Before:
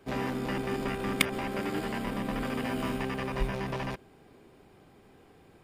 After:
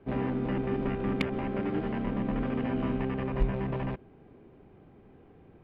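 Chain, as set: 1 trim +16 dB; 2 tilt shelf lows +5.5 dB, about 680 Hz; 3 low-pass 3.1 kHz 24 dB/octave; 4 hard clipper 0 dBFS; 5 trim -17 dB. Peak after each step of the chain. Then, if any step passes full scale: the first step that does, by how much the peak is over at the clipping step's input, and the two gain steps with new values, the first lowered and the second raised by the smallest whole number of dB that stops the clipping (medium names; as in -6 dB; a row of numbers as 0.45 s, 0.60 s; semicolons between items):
+6.5 dBFS, +7.0 dBFS, +6.5 dBFS, 0.0 dBFS, -17.0 dBFS; step 1, 6.5 dB; step 1 +9 dB, step 5 -10 dB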